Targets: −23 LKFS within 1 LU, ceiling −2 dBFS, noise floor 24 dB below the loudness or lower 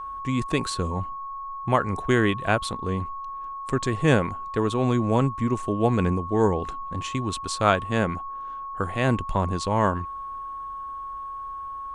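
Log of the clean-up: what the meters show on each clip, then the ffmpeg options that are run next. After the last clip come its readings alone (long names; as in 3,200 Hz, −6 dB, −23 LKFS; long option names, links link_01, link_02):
interfering tone 1,100 Hz; level of the tone −32 dBFS; integrated loudness −26.0 LKFS; sample peak −4.5 dBFS; target loudness −23.0 LKFS
→ -af "bandreject=frequency=1100:width=30"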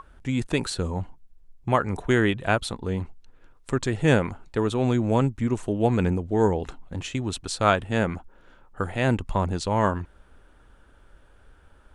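interfering tone none found; integrated loudness −25.5 LKFS; sample peak −5.0 dBFS; target loudness −23.0 LKFS
→ -af "volume=2.5dB"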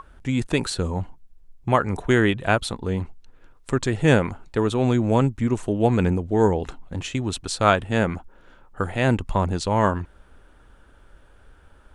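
integrated loudness −23.0 LKFS; sample peak −2.5 dBFS; background noise floor −53 dBFS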